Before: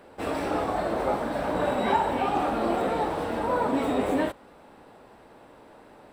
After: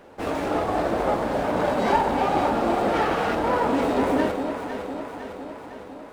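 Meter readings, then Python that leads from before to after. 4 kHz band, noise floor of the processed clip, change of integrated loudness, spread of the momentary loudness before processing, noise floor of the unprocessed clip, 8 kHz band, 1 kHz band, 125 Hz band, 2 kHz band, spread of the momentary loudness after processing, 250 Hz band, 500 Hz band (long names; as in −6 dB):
+4.0 dB, −41 dBFS, +3.0 dB, 4 LU, −52 dBFS, +3.5 dB, +3.5 dB, +4.0 dB, +4.5 dB, 14 LU, +4.0 dB, +4.0 dB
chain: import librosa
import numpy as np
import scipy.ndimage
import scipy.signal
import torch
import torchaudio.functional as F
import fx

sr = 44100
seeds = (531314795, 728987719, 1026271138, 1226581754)

y = fx.spec_box(x, sr, start_s=2.94, length_s=0.41, low_hz=1100.0, high_hz=3400.0, gain_db=9)
y = fx.echo_alternate(y, sr, ms=253, hz=800.0, feedback_pct=77, wet_db=-5.5)
y = fx.running_max(y, sr, window=5)
y = F.gain(torch.from_numpy(y), 2.5).numpy()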